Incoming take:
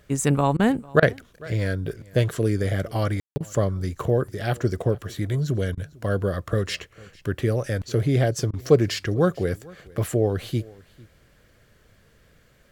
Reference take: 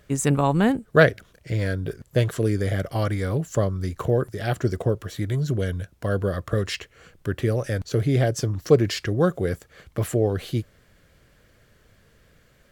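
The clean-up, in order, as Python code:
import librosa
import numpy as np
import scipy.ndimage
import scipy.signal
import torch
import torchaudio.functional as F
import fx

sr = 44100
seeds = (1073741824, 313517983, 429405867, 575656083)

y = fx.fix_ambience(x, sr, seeds[0], print_start_s=12.2, print_end_s=12.7, start_s=3.2, end_s=3.36)
y = fx.fix_interpolate(y, sr, at_s=(0.57, 1.0, 3.38, 5.75, 8.51), length_ms=23.0)
y = fx.fix_echo_inverse(y, sr, delay_ms=449, level_db=-23.5)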